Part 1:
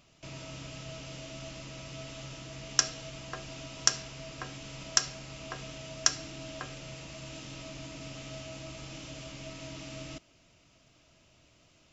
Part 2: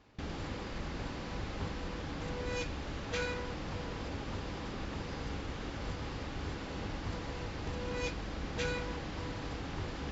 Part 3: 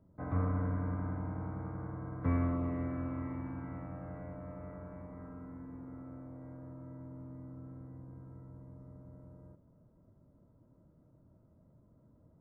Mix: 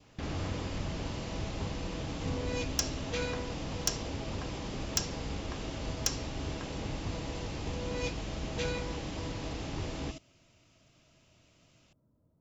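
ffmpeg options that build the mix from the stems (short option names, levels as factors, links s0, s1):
-filter_complex "[0:a]asoftclip=type=hard:threshold=0.168,volume=0.75[s0];[1:a]volume=1.26[s1];[2:a]volume=0.422[s2];[s0][s1][s2]amix=inputs=3:normalize=0,adynamicequalizer=threshold=0.002:dfrequency=1500:dqfactor=1.6:tfrequency=1500:tqfactor=1.6:attack=5:release=100:ratio=0.375:range=3:mode=cutabove:tftype=bell"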